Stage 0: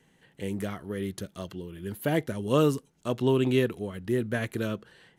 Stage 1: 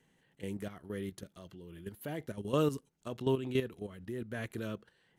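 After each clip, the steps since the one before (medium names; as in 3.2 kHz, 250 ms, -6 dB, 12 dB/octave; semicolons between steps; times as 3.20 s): level held to a coarse grid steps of 11 dB; trim -5 dB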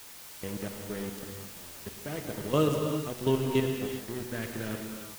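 crossover distortion -46 dBFS; added noise white -53 dBFS; gated-style reverb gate 420 ms flat, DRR 2 dB; trim +4.5 dB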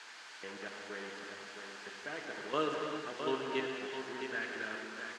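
companding laws mixed up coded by mu; cabinet simulation 470–5800 Hz, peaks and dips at 550 Hz -6 dB, 1.6 kHz +8 dB, 3.7 kHz -3 dB, 5.6 kHz -5 dB; delay 662 ms -7 dB; trim -3.5 dB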